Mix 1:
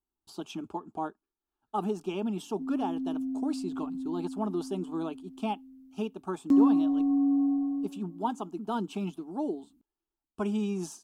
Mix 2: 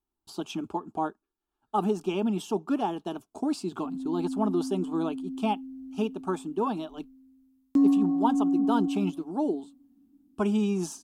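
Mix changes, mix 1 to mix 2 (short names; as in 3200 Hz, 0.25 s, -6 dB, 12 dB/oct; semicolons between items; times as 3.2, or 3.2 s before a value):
speech +4.5 dB; background: entry +1.25 s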